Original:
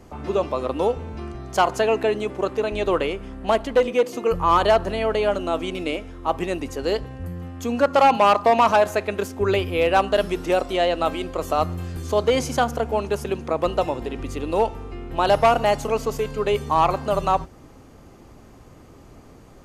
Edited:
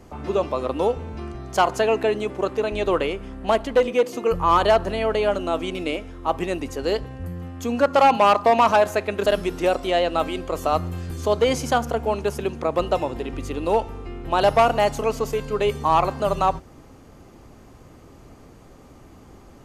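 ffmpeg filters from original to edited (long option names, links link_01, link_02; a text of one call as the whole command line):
ffmpeg -i in.wav -filter_complex "[0:a]asplit=2[link_01][link_02];[link_01]atrim=end=9.262[link_03];[link_02]atrim=start=10.118[link_04];[link_03][link_04]acrossfade=duration=0.004:curve1=hsin:curve2=hsin" out.wav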